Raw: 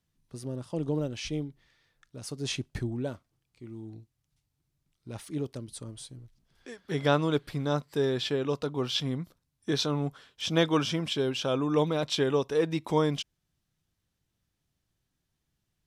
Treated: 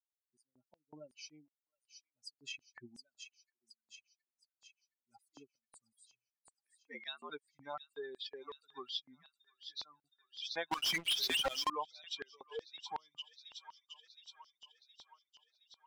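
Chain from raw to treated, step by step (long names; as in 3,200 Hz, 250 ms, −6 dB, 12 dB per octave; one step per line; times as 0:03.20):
spectral dynamics exaggerated over time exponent 3
0:06.73–0:07.30: frequency shifter +80 Hz
delay with a high-pass on its return 718 ms, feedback 53%, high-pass 4,200 Hz, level −7 dB
auto-filter high-pass square 2.7 Hz 920–4,200 Hz
high-frequency loss of the air 180 metres
0:09.21–0:10.04: fade out
downward compressor 2 to 1, threshold −57 dBFS, peak gain reduction 16 dB
0:10.71–0:11.70: leveller curve on the samples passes 5
level +9 dB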